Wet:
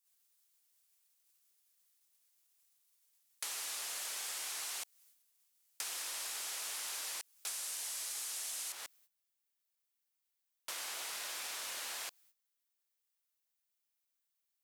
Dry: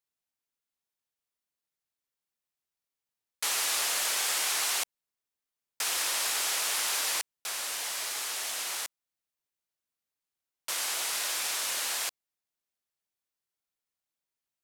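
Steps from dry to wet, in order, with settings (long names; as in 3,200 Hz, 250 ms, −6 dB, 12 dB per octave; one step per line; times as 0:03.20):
background noise blue −63 dBFS
parametric band 9,300 Hz +3.5 dB 2 octaves, from 0:07.47 +11 dB, from 0:08.72 −2.5 dB
noise gate −59 dBFS, range −16 dB
downward compressor 6 to 1, threshold −34 dBFS, peak gain reduction 10.5 dB
level −5 dB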